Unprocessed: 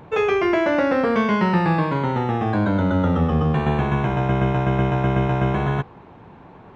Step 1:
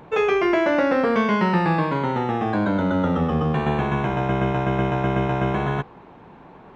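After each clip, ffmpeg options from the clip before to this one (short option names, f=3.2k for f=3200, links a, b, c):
-af "equalizer=f=92:w=1.4:g=-8.5"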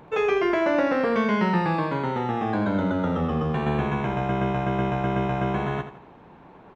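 -af "aecho=1:1:82|164|246|328:0.282|0.101|0.0365|0.0131,volume=-3.5dB"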